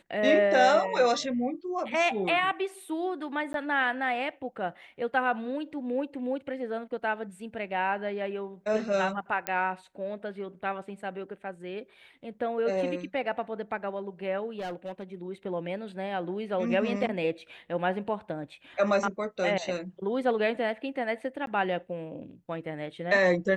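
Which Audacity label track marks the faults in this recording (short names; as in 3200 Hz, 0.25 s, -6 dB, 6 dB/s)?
3.530000	3.540000	gap 12 ms
9.470000	9.470000	pop -12 dBFS
14.590000	15.150000	clipped -31.5 dBFS
21.460000	21.470000	gap 12 ms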